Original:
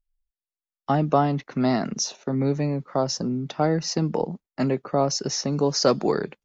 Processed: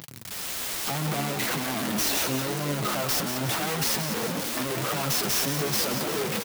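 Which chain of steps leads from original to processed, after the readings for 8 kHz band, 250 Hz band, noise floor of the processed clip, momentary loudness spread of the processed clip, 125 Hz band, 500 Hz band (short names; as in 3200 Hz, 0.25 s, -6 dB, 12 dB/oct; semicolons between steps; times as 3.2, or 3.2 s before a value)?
n/a, -6.5 dB, -37 dBFS, 5 LU, -5.0 dB, -7.0 dB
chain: infinite clipping; HPF 110 Hz 24 dB/oct; high shelf 3700 Hz +8 dB; AGC gain up to 3.5 dB; flange 1.8 Hz, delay 5.9 ms, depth 3.9 ms, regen +32%; on a send: frequency-shifting echo 0.178 s, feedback 55%, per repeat +63 Hz, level -8 dB; on the sum: clock jitter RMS 0.033 ms; gain -5 dB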